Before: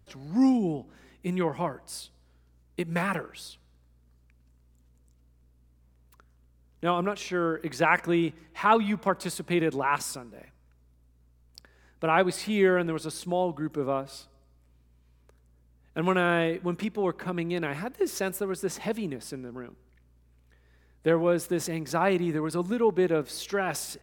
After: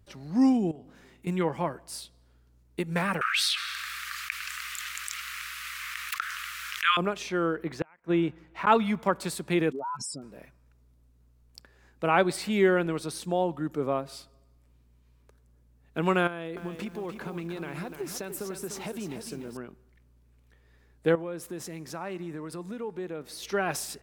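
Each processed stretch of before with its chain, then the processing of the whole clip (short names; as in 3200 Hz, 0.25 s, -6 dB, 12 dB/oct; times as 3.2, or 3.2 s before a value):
0.71–1.27 compressor 12:1, threshold -42 dBFS + doubler 43 ms -9 dB
3.21–6.97 elliptic high-pass 1200 Hz + bell 2100 Hz +12.5 dB 1.7 oct + fast leveller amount 70%
7.56–8.67 bell 11000 Hz -11.5 dB 2.1 oct + flipped gate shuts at -15 dBFS, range -35 dB
9.71–10.22 spectral contrast raised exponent 3.1 + compressor, threshold -31 dBFS + crackle 46/s -50 dBFS
16.27–19.57 bell 1900 Hz -4 dB 0.22 oct + compressor 5:1, threshold -32 dBFS + lo-fi delay 0.297 s, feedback 35%, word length 9-bit, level -7.5 dB
21.15–23.43 compressor 2:1, threshold -33 dBFS + resonator 95 Hz, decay 1.9 s, mix 40%
whole clip: dry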